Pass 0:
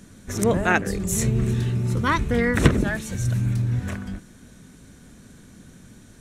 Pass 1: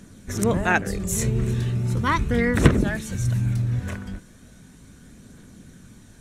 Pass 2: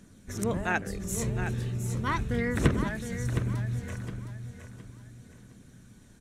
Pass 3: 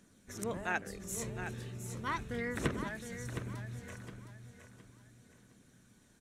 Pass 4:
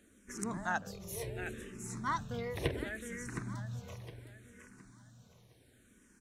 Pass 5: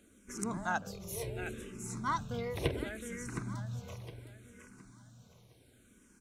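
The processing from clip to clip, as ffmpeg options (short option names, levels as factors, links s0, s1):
-af "aphaser=in_gain=1:out_gain=1:delay=2.2:decay=0.22:speed=0.37:type=triangular,volume=0.891"
-af "aecho=1:1:714|1428|2142|2856:0.355|0.117|0.0386|0.0128,volume=0.398"
-af "lowshelf=f=200:g=-10,volume=0.531"
-filter_complex "[0:a]asplit=2[s0][s1];[s1]afreqshift=-0.69[s2];[s0][s2]amix=inputs=2:normalize=1,volume=1.41"
-af "bandreject=f=1800:w=5.8,volume=1.19"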